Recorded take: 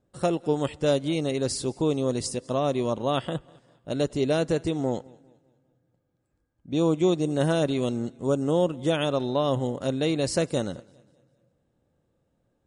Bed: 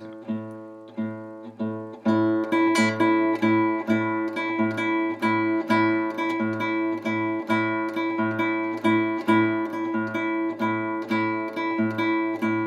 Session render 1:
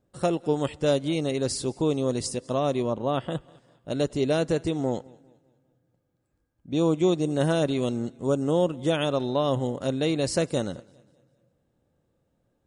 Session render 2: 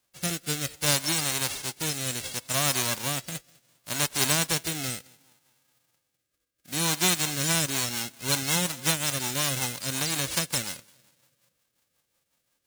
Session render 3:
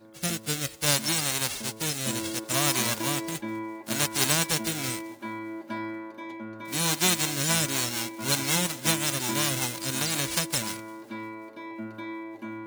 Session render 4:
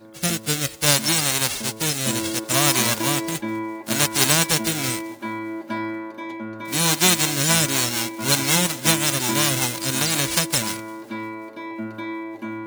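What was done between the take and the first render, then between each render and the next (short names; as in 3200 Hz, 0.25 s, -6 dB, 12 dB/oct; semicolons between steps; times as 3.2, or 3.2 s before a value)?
2.82–3.3 high shelf 2600 Hz -10 dB
spectral whitening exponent 0.1; rotary speaker horn 0.65 Hz, later 5.5 Hz, at 6.96
add bed -13.5 dB
gain +6.5 dB; limiter -1 dBFS, peak gain reduction 1 dB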